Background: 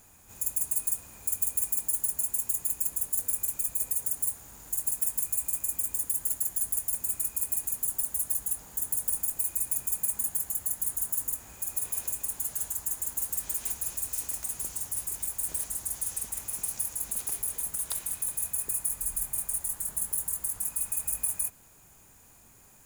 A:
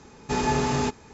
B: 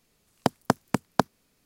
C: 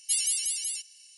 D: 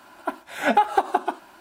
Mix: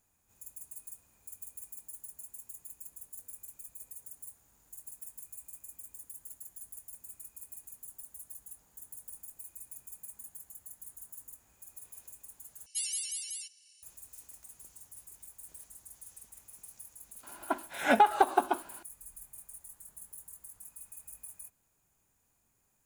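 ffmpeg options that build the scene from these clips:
-filter_complex "[0:a]volume=-18dB[a];[3:a]asuperstop=centerf=910:order=4:qfactor=4.1[b];[a]asplit=2[c][d];[c]atrim=end=12.664[e];[b]atrim=end=1.17,asetpts=PTS-STARTPTS,volume=-8dB[f];[d]atrim=start=13.826[g];[4:a]atrim=end=1.6,asetpts=PTS-STARTPTS,volume=-4dB,afade=t=in:d=0.004:c=hsin,afade=t=out:st=1.596:d=0.004:c=hsin,adelay=17230[h];[e][f]acrossfade=d=0.004:c1=hsin:c2=hsin[i];[i][g]acrossfade=d=0.004:c1=hsin:c2=hsin[j];[j][h]amix=inputs=2:normalize=0"

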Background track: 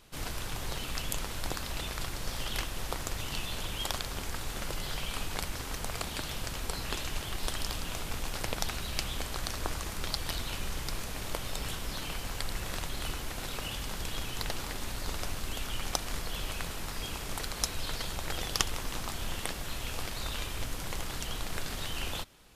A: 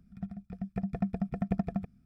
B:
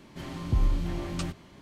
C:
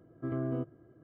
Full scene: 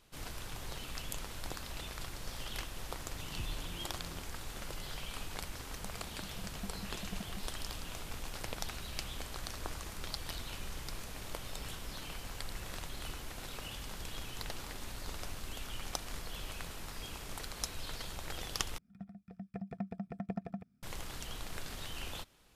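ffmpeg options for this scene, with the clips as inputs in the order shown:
-filter_complex "[1:a]asplit=2[a][b];[0:a]volume=-7dB[c];[b]highpass=f=220:p=1[d];[c]asplit=2[e][f];[e]atrim=end=18.784[g];[d]atrim=end=2.05,asetpts=PTS-STARTPTS,volume=-5.5dB[h];[f]atrim=start=20.826[i];[2:a]atrim=end=1.61,asetpts=PTS-STARTPTS,volume=-17.5dB,afade=t=in:d=0.004:c=hsin,afade=t=out:st=1.606:d=0.004:c=hsin,adelay=2870[j];[a]atrim=end=2.05,asetpts=PTS-STARTPTS,volume=-15.5dB,afade=t=in:d=0.004:c=hsin,afade=t=out:st=2.046:d=0.004:c=hsin,adelay=247401S[k];[g][h]acrossfade=d=0.004:c1=hsin:c2=hsin[l];[l][i]acrossfade=d=0.004:c1=hsin:c2=hsin[m];[m][j][k]amix=inputs=3:normalize=0"

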